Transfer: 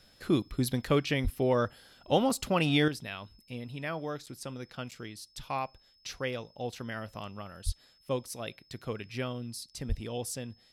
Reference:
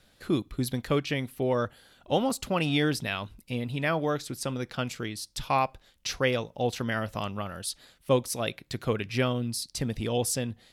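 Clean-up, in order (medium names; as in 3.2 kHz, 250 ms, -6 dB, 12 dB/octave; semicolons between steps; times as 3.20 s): band-stop 5.2 kHz, Q 30; 1.23–1.35 s: high-pass 140 Hz 24 dB/octave; 7.65–7.77 s: high-pass 140 Hz 24 dB/octave; 9.88–10.00 s: high-pass 140 Hz 24 dB/octave; interpolate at 4.26/4.91 s, 6.7 ms; 2.88 s: gain correction +8.5 dB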